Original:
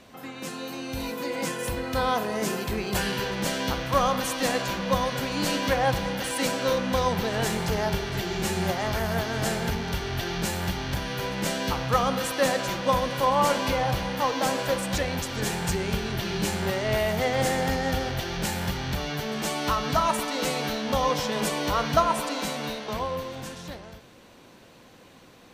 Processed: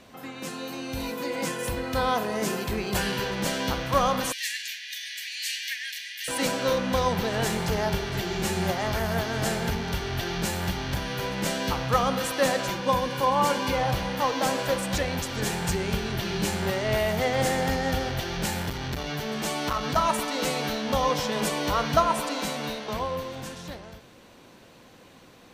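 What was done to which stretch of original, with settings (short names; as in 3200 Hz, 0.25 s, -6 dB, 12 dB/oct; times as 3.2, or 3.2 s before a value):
4.32–6.28 steep high-pass 1700 Hz 96 dB/oct
12.71–13.74 notch comb 650 Hz
18.62–19.96 core saturation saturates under 510 Hz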